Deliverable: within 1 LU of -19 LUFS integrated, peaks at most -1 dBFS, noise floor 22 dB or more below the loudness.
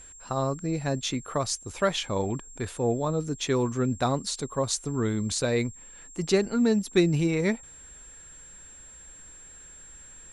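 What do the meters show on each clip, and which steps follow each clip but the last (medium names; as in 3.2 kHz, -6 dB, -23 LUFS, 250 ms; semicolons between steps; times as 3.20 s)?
steady tone 7.5 kHz; tone level -46 dBFS; loudness -27.5 LUFS; peak level -10.0 dBFS; loudness target -19.0 LUFS
-> band-stop 7.5 kHz, Q 30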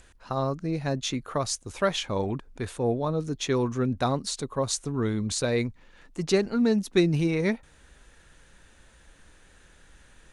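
steady tone not found; loudness -27.5 LUFS; peak level -10.0 dBFS; loudness target -19.0 LUFS
-> trim +8.5 dB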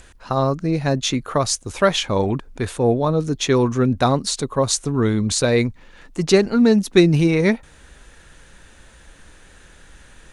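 loudness -19.0 LUFS; peak level -1.5 dBFS; noise floor -48 dBFS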